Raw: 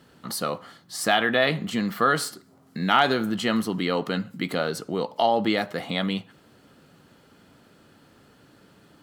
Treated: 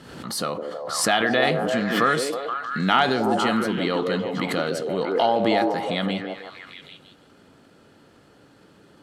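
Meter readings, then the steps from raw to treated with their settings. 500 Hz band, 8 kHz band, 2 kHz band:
+3.5 dB, +4.0 dB, +1.5 dB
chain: LPF 11000 Hz 12 dB/oct; on a send: delay with a stepping band-pass 0.159 s, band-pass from 390 Hz, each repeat 0.7 oct, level 0 dB; on the sum: backwards sustainer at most 52 dB/s

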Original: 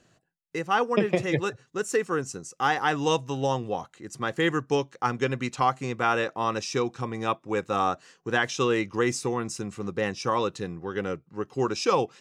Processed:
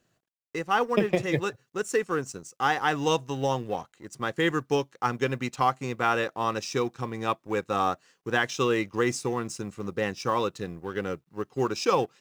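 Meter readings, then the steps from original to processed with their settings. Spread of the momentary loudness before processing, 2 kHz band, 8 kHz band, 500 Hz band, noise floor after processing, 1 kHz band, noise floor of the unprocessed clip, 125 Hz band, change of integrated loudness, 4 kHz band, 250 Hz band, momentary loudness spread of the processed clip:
9 LU, -0.5 dB, -1.5 dB, -0.5 dB, -79 dBFS, -0.5 dB, -70 dBFS, -1.0 dB, -0.5 dB, -0.5 dB, -1.0 dB, 10 LU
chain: G.711 law mismatch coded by A

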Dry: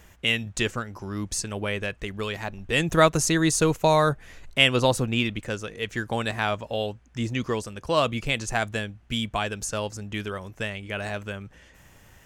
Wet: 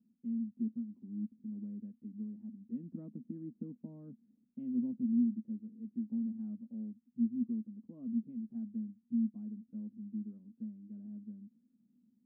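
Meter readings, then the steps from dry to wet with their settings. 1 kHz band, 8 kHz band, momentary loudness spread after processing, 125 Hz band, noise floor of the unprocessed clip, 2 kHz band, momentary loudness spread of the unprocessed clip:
under -40 dB, under -40 dB, 14 LU, -20.5 dB, -54 dBFS, under -40 dB, 13 LU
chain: Butterworth band-pass 230 Hz, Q 5.2

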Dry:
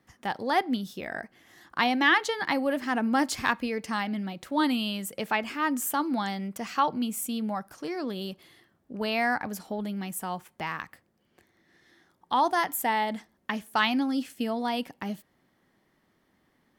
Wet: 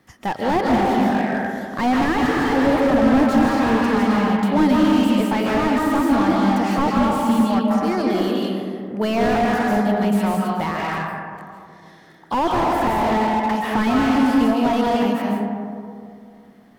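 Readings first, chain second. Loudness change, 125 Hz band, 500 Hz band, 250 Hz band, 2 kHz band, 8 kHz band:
+10.0 dB, +15.5 dB, +12.5 dB, +13.5 dB, +3.5 dB, -0.5 dB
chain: digital reverb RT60 2.4 s, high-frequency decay 0.3×, pre-delay 0.115 s, DRR -1.5 dB; maximiser +12 dB; slew limiter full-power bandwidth 150 Hz; gain -3 dB

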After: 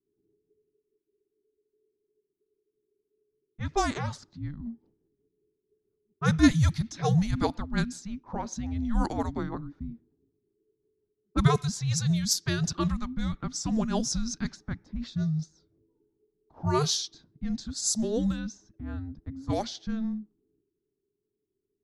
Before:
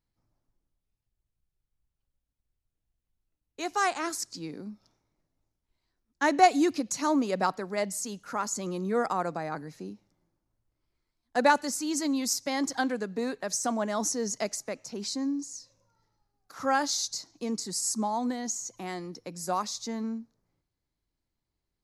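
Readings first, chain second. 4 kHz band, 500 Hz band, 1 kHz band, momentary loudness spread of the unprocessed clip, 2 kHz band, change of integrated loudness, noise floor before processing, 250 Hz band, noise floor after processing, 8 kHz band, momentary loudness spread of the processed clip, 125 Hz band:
+1.0 dB, -4.0 dB, -6.5 dB, 12 LU, -4.5 dB, 0.0 dB, -85 dBFS, +2.0 dB, -83 dBFS, -2.0 dB, 14 LU, +17.0 dB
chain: rotary speaker horn 5.5 Hz, later 0.6 Hz, at 16.23; low-pass opened by the level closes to 550 Hz, open at -26 dBFS; frequency shift -440 Hz; gain +4 dB

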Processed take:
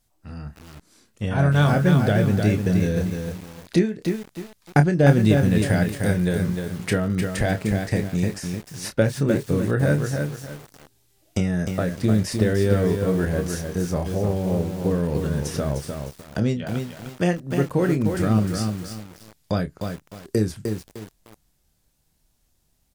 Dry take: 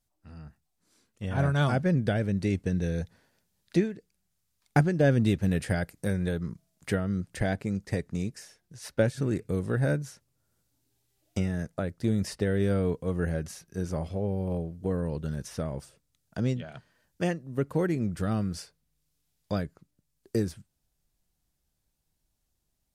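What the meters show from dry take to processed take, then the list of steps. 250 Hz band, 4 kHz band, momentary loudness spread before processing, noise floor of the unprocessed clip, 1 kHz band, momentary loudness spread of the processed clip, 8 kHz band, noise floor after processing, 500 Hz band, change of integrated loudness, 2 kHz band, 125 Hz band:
+7.5 dB, +8.5 dB, 14 LU, -78 dBFS, +7.5 dB, 15 LU, +9.5 dB, -67 dBFS, +7.0 dB, +7.0 dB, +7.5 dB, +8.0 dB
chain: in parallel at +1 dB: compressor 12:1, threshold -35 dBFS, peak gain reduction 19 dB; on the sum: doubler 28 ms -9 dB; lo-fi delay 0.304 s, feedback 35%, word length 7-bit, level -5 dB; gain +3.5 dB

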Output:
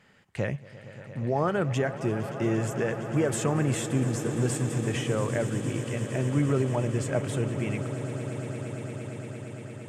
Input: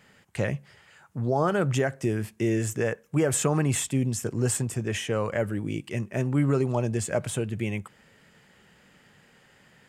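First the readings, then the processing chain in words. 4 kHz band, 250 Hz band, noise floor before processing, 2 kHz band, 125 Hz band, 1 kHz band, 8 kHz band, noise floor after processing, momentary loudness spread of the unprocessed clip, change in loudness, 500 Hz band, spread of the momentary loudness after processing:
-2.0 dB, -0.5 dB, -59 dBFS, -1.5 dB, 0.0 dB, -1.0 dB, -5.5 dB, -48 dBFS, 8 LU, -1.5 dB, -1.0 dB, 12 LU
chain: high shelf 7700 Hz -10 dB; on a send: swelling echo 0.115 s, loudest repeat 8, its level -16 dB; on the sum: gain -2 dB

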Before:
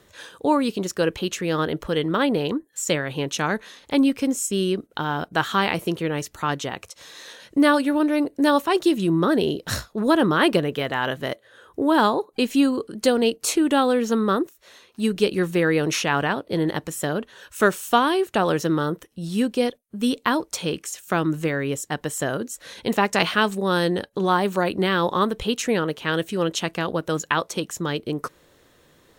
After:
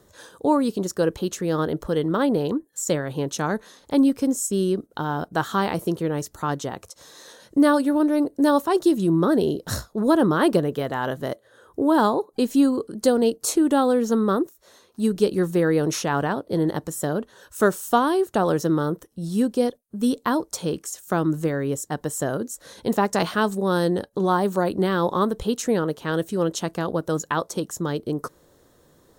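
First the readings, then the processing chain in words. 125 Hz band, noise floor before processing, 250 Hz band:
+1.0 dB, -59 dBFS, +1.0 dB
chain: bell 2500 Hz -13 dB 1.2 oct; gain +1 dB

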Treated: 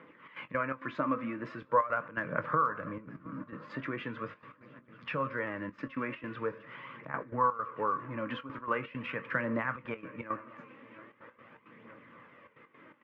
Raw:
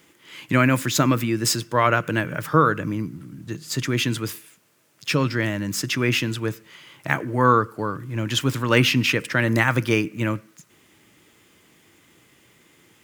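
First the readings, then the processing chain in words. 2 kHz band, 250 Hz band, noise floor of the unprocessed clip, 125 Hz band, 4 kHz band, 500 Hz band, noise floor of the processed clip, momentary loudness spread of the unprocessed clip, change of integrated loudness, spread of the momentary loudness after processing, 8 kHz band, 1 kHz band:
-13.0 dB, -15.0 dB, -58 dBFS, -21.0 dB, -26.0 dB, -11.0 dB, -64 dBFS, 12 LU, -13.0 dB, 22 LU, under -40 dB, -8.0 dB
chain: wow and flutter 16 cents; dynamic EQ 920 Hz, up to +4 dB, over -29 dBFS, Q 0.73; Schroeder reverb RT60 0.53 s, combs from 30 ms, DRR 17.5 dB; compressor 6:1, threshold -32 dBFS, peak gain reduction 21.5 dB; speaker cabinet 190–2100 Hz, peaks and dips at 360 Hz -9 dB, 520 Hz +6 dB, 750 Hz -6 dB, 1100 Hz +8 dB; swung echo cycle 0.935 s, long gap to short 3:1, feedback 56%, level -21.5 dB; step gate "xxx.x.xx.xxxxxx" 166 bpm -12 dB; phaser 0.42 Hz, delay 3.9 ms, feedback 38%; doubler 22 ms -13 dB; gain +1.5 dB

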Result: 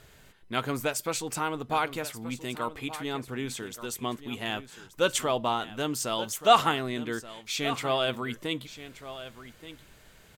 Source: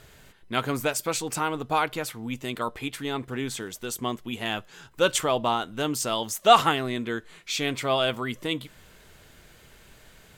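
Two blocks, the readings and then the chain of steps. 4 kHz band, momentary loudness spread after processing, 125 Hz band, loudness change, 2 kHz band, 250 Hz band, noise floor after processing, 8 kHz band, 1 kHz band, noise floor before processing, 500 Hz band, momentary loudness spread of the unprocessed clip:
-3.0 dB, 15 LU, -3.0 dB, -3.0 dB, -3.0 dB, -3.0 dB, -56 dBFS, -3.0 dB, -3.0 dB, -54 dBFS, -3.0 dB, 10 LU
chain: echo 1.177 s -14 dB; gain -3 dB

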